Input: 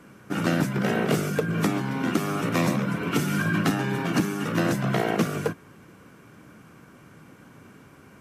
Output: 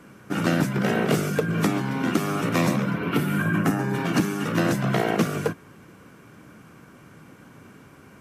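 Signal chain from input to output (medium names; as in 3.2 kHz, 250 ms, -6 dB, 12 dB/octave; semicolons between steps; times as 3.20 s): 2.89–3.93 s: peaking EQ 9.1 kHz -> 3 kHz -13.5 dB 1 oct; trim +1.5 dB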